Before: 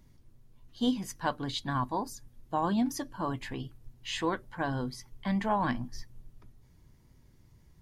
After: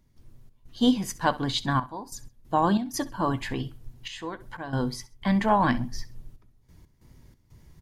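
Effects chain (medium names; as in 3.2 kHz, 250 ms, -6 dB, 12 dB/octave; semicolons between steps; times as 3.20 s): trance gate ".xx.xxxxxxx..x" 92 bpm -12 dB; feedback delay 65 ms, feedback 28%, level -18.5 dB; trim +7 dB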